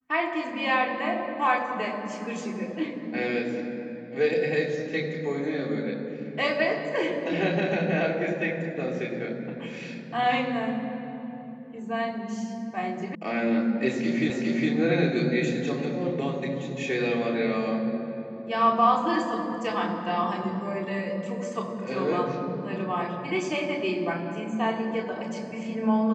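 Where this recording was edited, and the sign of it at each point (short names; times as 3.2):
13.15 sound cut off
14.3 repeat of the last 0.41 s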